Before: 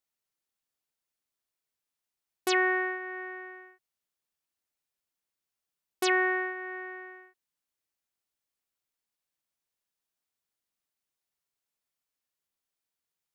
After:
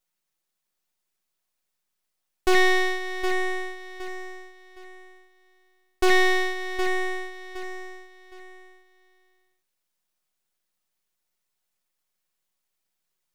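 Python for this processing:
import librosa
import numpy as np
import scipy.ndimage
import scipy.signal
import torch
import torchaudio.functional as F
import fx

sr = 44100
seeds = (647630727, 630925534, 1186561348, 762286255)

p1 = x + 0.65 * np.pad(x, (int(5.5 * sr / 1000.0), 0))[:len(x)]
p2 = np.maximum(p1, 0.0)
p3 = p2 + fx.echo_feedback(p2, sr, ms=765, feedback_pct=30, wet_db=-9.0, dry=0)
y = p3 * librosa.db_to_amplitude(8.5)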